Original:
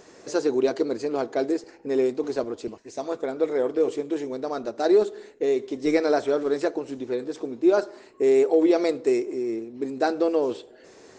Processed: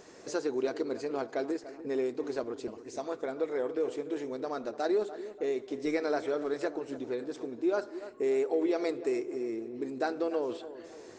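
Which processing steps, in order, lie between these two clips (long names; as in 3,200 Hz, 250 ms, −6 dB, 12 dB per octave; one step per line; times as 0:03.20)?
dynamic equaliser 1,600 Hz, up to +4 dB, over −39 dBFS, Q 0.74
downward compressor 1.5 to 1, threshold −36 dBFS, peak gain reduction 8 dB
on a send: feedback echo with a low-pass in the loop 292 ms, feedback 49%, low-pass 1,800 Hz, level −13 dB
on the sum: level −3 dB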